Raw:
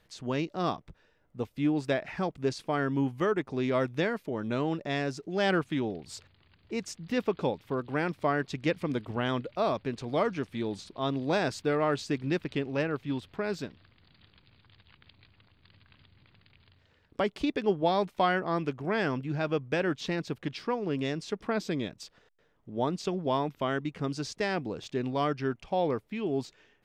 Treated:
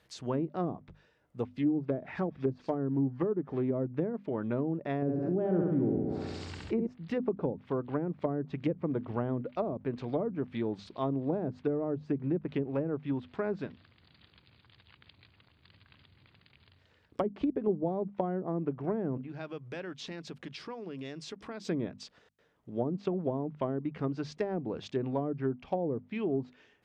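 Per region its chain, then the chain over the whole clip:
1.56–3.63 s: hum notches 50/100/150 Hz + feedback echo behind a high-pass 86 ms, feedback 78%, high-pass 5.2 kHz, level -7 dB + loudspeaker Doppler distortion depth 0.13 ms
5.02–6.87 s: treble shelf 4.5 kHz -8 dB + flutter echo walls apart 11.6 m, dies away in 0.95 s + level flattener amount 50%
19.17–21.65 s: compression 3:1, threshold -40 dBFS + hum notches 50/100/150/200/250 Hz
whole clip: high-pass 56 Hz; hum notches 50/100/150/200/250 Hz; low-pass that closes with the level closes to 410 Hz, closed at -25 dBFS

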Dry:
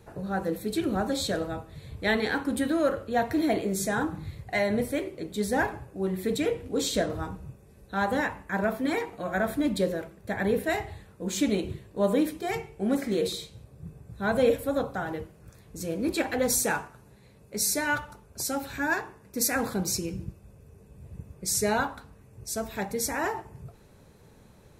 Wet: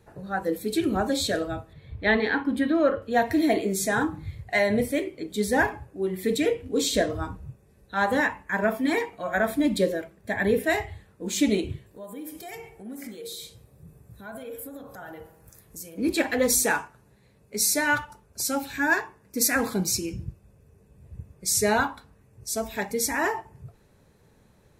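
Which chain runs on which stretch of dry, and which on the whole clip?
1.73–3.02 s: low-pass 11 kHz + peaking EQ 8.2 kHz -14.5 dB 1.3 oct
11.86–15.98 s: peaking EQ 14 kHz +11 dB 1.1 oct + compression 8:1, threshold -37 dBFS + feedback echo behind a band-pass 61 ms, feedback 63%, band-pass 760 Hz, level -6 dB
whole clip: spectral noise reduction 8 dB; peaking EQ 1.8 kHz +3.5 dB 0.26 oct; trim +3.5 dB

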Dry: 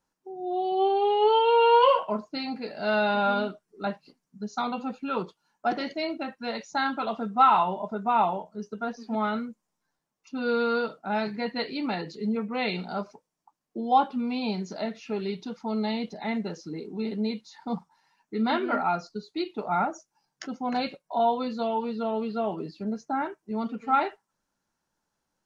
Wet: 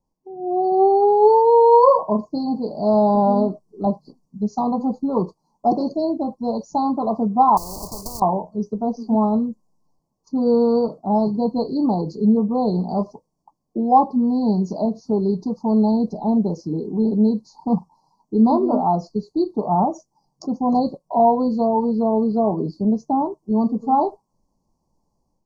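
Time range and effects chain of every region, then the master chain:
7.57–8.22 s: block-companded coder 5-bit + compression 4:1, threshold -27 dBFS + spectrum-flattening compressor 10:1
whole clip: Chebyshev band-stop 1.1–4.4 kHz, order 5; tilt EQ -2.5 dB/octave; level rider gain up to 7.5 dB

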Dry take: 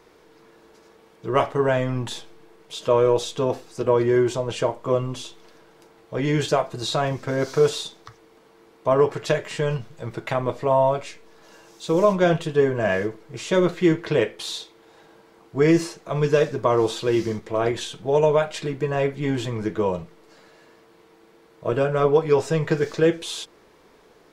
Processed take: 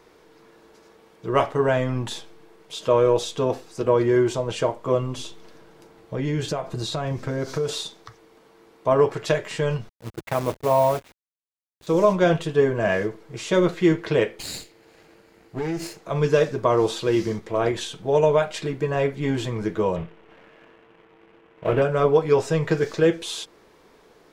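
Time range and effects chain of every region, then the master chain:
5.18–7.69 s: compression 2.5:1, threshold -28 dBFS + bass shelf 280 Hz +7 dB
9.89–11.87 s: send-on-delta sampling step -30.5 dBFS + gate -31 dBFS, range -14 dB + high-pass 43 Hz 6 dB/octave
14.39–15.99 s: comb filter that takes the minimum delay 0.42 ms + compression 4:1, threshold -25 dBFS
19.96–21.82 s: CVSD coder 16 kbps + waveshaping leveller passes 1 + doubling 24 ms -10.5 dB
whole clip: none

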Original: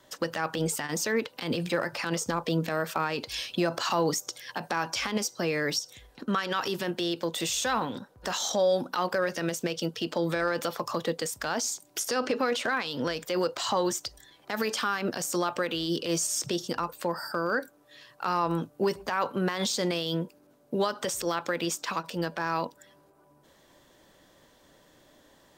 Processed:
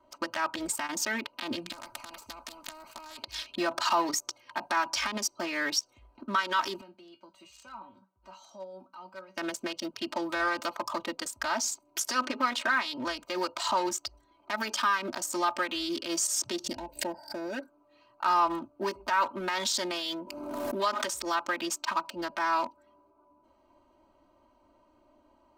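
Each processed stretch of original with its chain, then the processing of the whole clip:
1.72–3.23 s: peaking EQ 350 Hz -13.5 dB 0.46 oct + spectrum-flattening compressor 4:1
6.81–9.37 s: high-pass 44 Hz + peaking EQ 440 Hz -9.5 dB 2.8 oct + feedback comb 190 Hz, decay 0.19 s, mix 80%
16.64–17.61 s: Butterworth band-stop 1.2 kHz, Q 1.2 + bass shelf 130 Hz +7 dB + swell ahead of each attack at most 120 dB/s
19.40–21.06 s: bass shelf 250 Hz -4.5 dB + swell ahead of each attack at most 28 dB/s
whole clip: local Wiener filter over 25 samples; resonant low shelf 690 Hz -7 dB, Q 1.5; comb 3.2 ms, depth 100%

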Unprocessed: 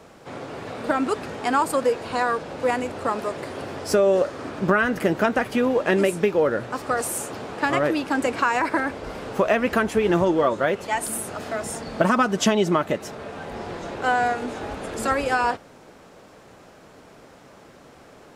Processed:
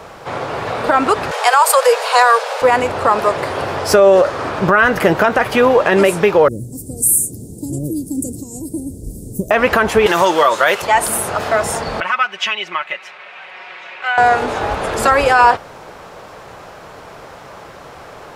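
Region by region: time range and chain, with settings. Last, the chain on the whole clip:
1.31–2.62 s: steep high-pass 440 Hz 96 dB/octave + treble shelf 3.6 kHz +10.5 dB
6.48–9.51 s: Chebyshev band-stop 280–8700 Hz, order 3 + tone controls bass +1 dB, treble +9 dB
10.06–10.82 s: high-pass 94 Hz + tilt EQ +4 dB/octave
12.00–14.18 s: band-pass filter 2.4 kHz, Q 3 + comb 5.4 ms, depth 54%
whole clip: ten-band graphic EQ 250 Hz -9 dB, 1 kHz +4 dB, 8 kHz -4 dB; loudness maximiser +13.5 dB; trim -1 dB

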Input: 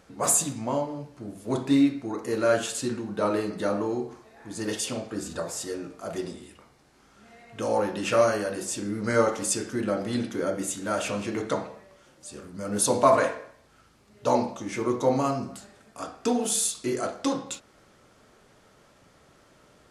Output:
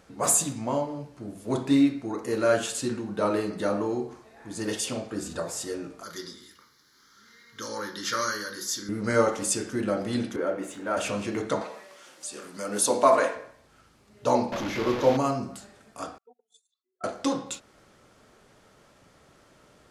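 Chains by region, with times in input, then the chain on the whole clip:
6.03–8.89 s: tilt EQ +3.5 dB/octave + static phaser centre 2.6 kHz, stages 6
10.36–10.97 s: companding laws mixed up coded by mu + three-band isolator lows -12 dB, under 270 Hz, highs -15 dB, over 2.7 kHz
11.61–13.36 s: high-pass 250 Hz + tape noise reduction on one side only encoder only
14.52–15.17 s: one-bit delta coder 64 kbps, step -24.5 dBFS + boxcar filter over 5 samples + peaking EQ 570 Hz +5.5 dB 0.28 oct
16.18–17.04 s: spectral contrast enhancement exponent 2.5 + ladder band-pass 1.5 kHz, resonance 40% + gate -55 dBFS, range -25 dB
whole clip: none

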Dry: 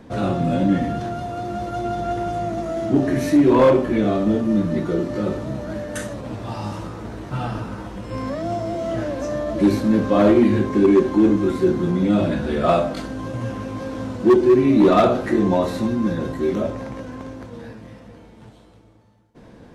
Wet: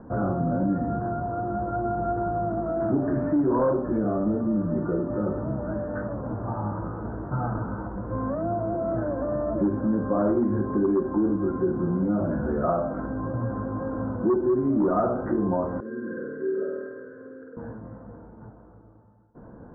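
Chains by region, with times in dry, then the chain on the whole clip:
2.80–3.59 s: jump at every zero crossing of -29.5 dBFS + treble shelf 3.8 kHz +11 dB
15.80–17.57 s: two resonant band-passes 850 Hz, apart 1.9 oct + flutter echo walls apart 8.5 m, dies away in 1.2 s
whole clip: compression 2.5:1, threshold -23 dBFS; Chebyshev low-pass 1.5 kHz, order 5

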